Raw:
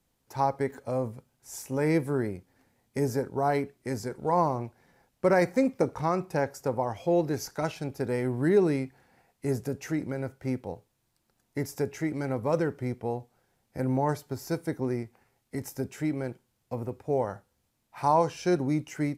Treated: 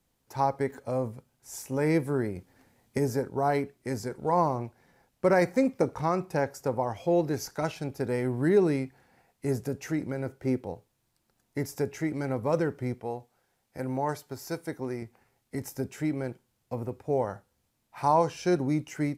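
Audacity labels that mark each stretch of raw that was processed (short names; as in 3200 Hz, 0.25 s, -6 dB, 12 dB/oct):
2.360000	2.980000	gain +4.5 dB
10.260000	10.660000	bell 370 Hz +6.5 dB 0.91 oct
13.000000	15.020000	low shelf 390 Hz -7 dB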